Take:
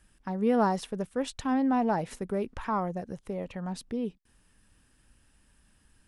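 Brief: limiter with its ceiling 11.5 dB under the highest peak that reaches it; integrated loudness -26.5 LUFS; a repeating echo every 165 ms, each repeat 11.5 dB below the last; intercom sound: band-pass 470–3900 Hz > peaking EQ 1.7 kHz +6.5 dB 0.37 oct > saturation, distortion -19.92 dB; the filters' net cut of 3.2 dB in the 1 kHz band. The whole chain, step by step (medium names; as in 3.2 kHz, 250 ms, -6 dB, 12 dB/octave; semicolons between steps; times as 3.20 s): peaking EQ 1 kHz -4 dB; peak limiter -26 dBFS; band-pass 470–3900 Hz; peaking EQ 1.7 kHz +6.5 dB 0.37 oct; feedback delay 165 ms, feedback 27%, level -11.5 dB; saturation -28 dBFS; trim +15 dB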